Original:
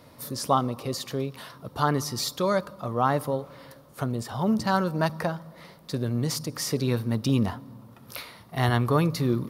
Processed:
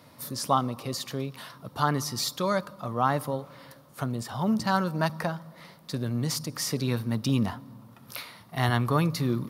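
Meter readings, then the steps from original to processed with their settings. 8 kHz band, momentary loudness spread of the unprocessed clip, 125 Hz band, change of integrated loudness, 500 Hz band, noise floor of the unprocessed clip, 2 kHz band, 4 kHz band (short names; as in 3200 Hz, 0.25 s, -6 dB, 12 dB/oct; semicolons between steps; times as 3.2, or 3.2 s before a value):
0.0 dB, 16 LU, -1.5 dB, -1.5 dB, -3.5 dB, -52 dBFS, 0.0 dB, 0.0 dB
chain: HPF 100 Hz; bell 430 Hz -5 dB 1.1 oct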